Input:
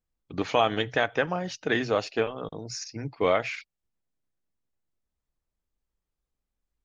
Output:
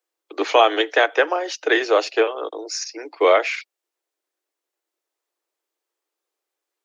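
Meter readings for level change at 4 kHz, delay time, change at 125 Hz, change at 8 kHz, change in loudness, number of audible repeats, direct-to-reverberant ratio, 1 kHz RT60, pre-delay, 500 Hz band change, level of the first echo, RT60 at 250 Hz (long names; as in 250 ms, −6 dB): +8.5 dB, no echo audible, below −35 dB, can't be measured, +8.5 dB, no echo audible, no reverb audible, no reverb audible, no reverb audible, +8.5 dB, no echo audible, no reverb audible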